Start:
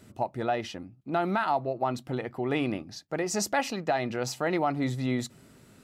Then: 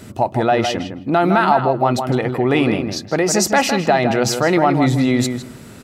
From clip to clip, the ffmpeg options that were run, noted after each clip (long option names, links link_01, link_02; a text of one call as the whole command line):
ffmpeg -i in.wav -filter_complex "[0:a]asplit=2[link_01][link_02];[link_02]alimiter=level_in=4.5dB:limit=-24dB:level=0:latency=1:release=25,volume=-4.5dB,volume=1.5dB[link_03];[link_01][link_03]amix=inputs=2:normalize=0,asplit=2[link_04][link_05];[link_05]adelay=159,lowpass=frequency=2400:poles=1,volume=-6.5dB,asplit=2[link_06][link_07];[link_07]adelay=159,lowpass=frequency=2400:poles=1,volume=0.18,asplit=2[link_08][link_09];[link_09]adelay=159,lowpass=frequency=2400:poles=1,volume=0.18[link_10];[link_04][link_06][link_08][link_10]amix=inputs=4:normalize=0,volume=9dB" out.wav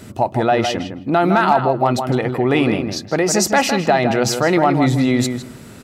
ffmpeg -i in.wav -af "asoftclip=type=hard:threshold=-5dB" out.wav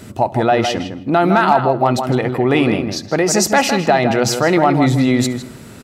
ffmpeg -i in.wav -af "aecho=1:1:70|140|210|280:0.075|0.039|0.0203|0.0105,volume=1.5dB" out.wav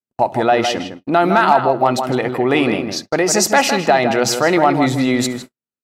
ffmpeg -i in.wav -af "agate=range=-60dB:threshold=-26dB:ratio=16:detection=peak,equalizer=frequency=62:width_type=o:width=2.8:gain=-11.5,volume=1dB" out.wav